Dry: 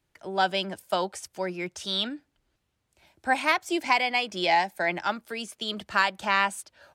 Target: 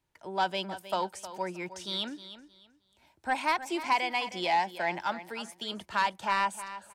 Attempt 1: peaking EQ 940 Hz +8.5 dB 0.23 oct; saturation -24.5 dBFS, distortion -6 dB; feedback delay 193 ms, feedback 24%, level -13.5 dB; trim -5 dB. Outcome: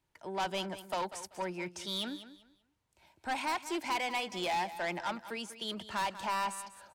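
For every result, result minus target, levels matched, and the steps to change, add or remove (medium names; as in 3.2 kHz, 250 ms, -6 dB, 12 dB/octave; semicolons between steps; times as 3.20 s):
echo 119 ms early; saturation: distortion +11 dB
change: feedback delay 312 ms, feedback 24%, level -13.5 dB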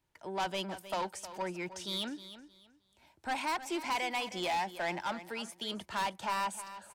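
saturation: distortion +11 dB
change: saturation -13 dBFS, distortion -17 dB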